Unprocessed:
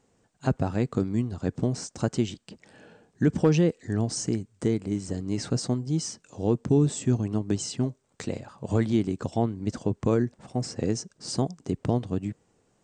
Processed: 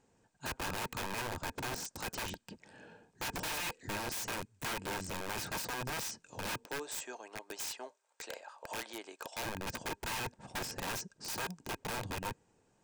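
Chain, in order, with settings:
0:06.65–0:09.43: high-pass filter 560 Hz 24 dB per octave
wrap-around overflow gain 29 dB
hollow resonant body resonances 910/1,600/2,500 Hz, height 9 dB
level −4.5 dB

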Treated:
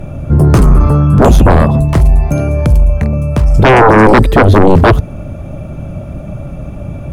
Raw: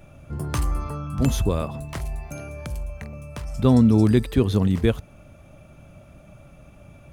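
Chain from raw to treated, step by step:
tilt shelving filter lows +7 dB
sine wavefolder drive 15 dB, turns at −0.5 dBFS
level −1 dB

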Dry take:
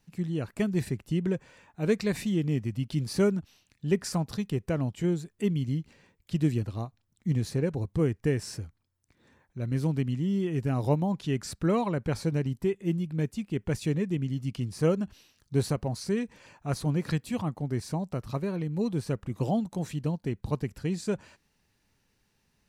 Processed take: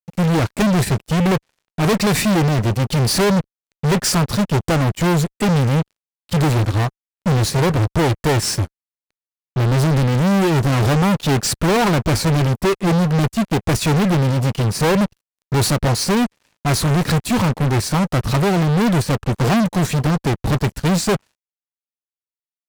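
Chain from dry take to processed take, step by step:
parametric band 82 Hz −5.5 dB 0.28 octaves
fuzz pedal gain 45 dB, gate −50 dBFS
expander for the loud parts 2.5 to 1, over −32 dBFS

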